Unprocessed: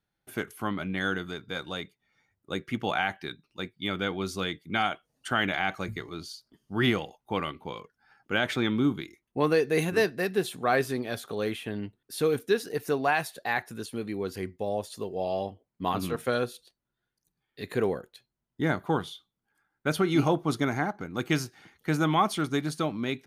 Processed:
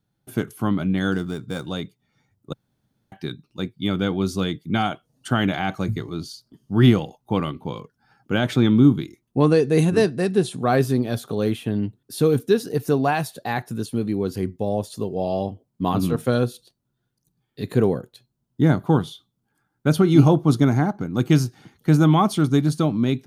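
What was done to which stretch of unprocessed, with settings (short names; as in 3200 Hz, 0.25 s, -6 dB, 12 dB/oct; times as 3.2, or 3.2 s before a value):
1.12–1.67 median filter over 9 samples
2.53–3.12 room tone
9.43–10.59 careless resampling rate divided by 2×, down none, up filtered
whole clip: graphic EQ 125/250/2000 Hz +10/+5/-7 dB; gain +4.5 dB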